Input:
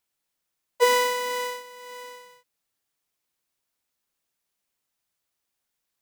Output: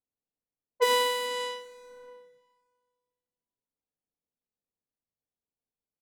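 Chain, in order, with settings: 1.64–2.08 s: self-modulated delay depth 0.26 ms; delay 79 ms -12.5 dB; level-controlled noise filter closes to 520 Hz, open at -22 dBFS; two-slope reverb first 0.24 s, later 1.9 s, from -18 dB, DRR 4.5 dB; trim -5.5 dB

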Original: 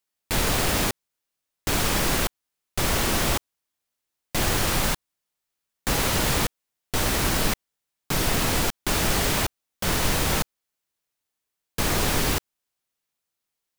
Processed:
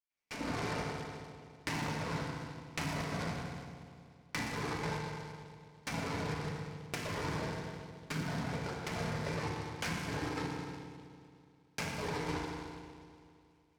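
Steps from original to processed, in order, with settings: low-pass that closes with the level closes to 920 Hz, closed at -21.5 dBFS; level rider gain up to 14 dB; cabinet simulation 170–3700 Hz, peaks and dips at 170 Hz +6 dB, 320 Hz -8 dB, 510 Hz -8 dB, 740 Hz -6 dB, 1.3 kHz -6 dB, 2.3 kHz +10 dB; reverb removal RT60 1.6 s; touch-sensitive flanger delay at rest 10.9 ms, full sweep at -12.5 dBFS; trance gate ".xx.xxxx.xx" 149 bpm -12 dB; compression 6:1, threshold -36 dBFS, peak gain reduction 18 dB; FDN reverb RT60 2.4 s, low-frequency decay 1.05×, high-frequency decay 0.85×, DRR -4.5 dB; dynamic bell 1.5 kHz, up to +5 dB, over -52 dBFS, Q 1.5; delay time shaken by noise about 2.7 kHz, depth 0.049 ms; trim -4.5 dB

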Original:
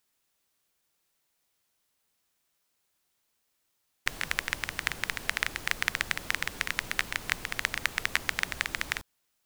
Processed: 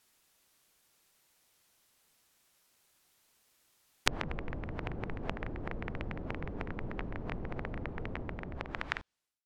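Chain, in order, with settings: fade out at the end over 1.34 s; low-pass that closes with the level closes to 480 Hz, closed at -33 dBFS; loudspeaker Doppler distortion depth 0.9 ms; trim +7 dB

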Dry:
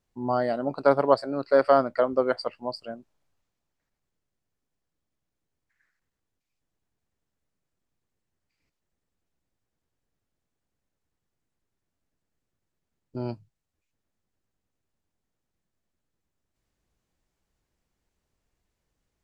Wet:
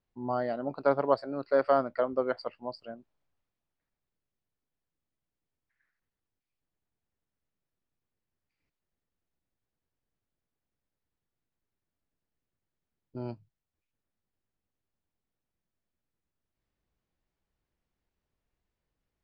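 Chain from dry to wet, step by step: low-pass 4.2 kHz 12 dB/octave; trim -5.5 dB

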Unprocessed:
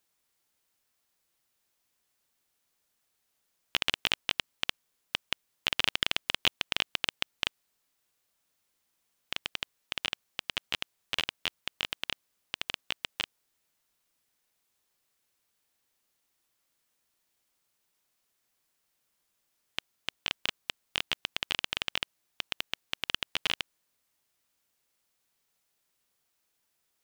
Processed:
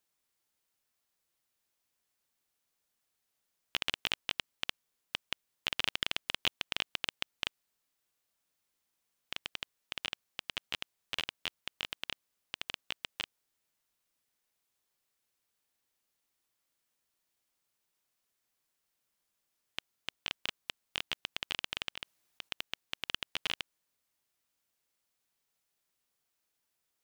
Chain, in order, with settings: 21.95–22.49 s: compressor with a negative ratio -36 dBFS, ratio -0.5; trim -5 dB

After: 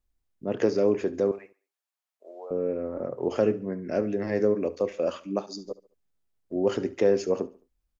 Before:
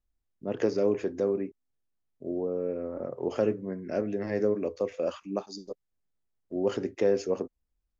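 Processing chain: 1.31–2.51 s: high-pass 660 Hz 24 dB/octave; on a send: feedback delay 71 ms, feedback 37%, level -19 dB; on the sum: trim +3 dB

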